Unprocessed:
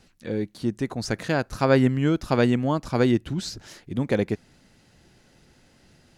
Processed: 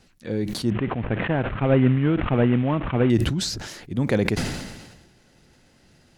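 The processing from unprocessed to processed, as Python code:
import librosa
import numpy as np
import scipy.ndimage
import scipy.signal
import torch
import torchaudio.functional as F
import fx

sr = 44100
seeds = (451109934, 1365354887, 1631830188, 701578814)

y = fx.cvsd(x, sr, bps=16000, at=(0.7, 3.1))
y = fx.dynamic_eq(y, sr, hz=110.0, q=0.82, threshold_db=-36.0, ratio=4.0, max_db=3)
y = fx.sustainer(y, sr, db_per_s=45.0)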